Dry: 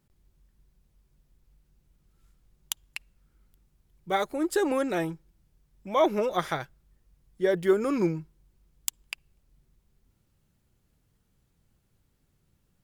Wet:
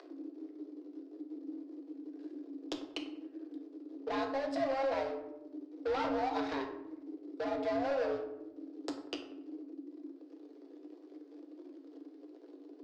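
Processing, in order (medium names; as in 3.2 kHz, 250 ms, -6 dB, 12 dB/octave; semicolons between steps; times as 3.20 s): single-diode clipper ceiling -22.5 dBFS; tilt EQ -3.5 dB/octave; upward compressor, threshold -40 dBFS; waveshaping leveller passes 2; compression 20:1, threshold -27 dBFS, peak gain reduction 18.5 dB; flange 0.6 Hz, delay 2.3 ms, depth 7.3 ms, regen -40%; frequency shift +270 Hz; hard clipper -32 dBFS, distortion -12 dB; resonant low-pass 4.8 kHz, resonance Q 2.6; feedback echo behind a band-pass 94 ms, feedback 40%, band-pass 850 Hz, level -11 dB; on a send at -4 dB: reverberation RT60 0.75 s, pre-delay 4 ms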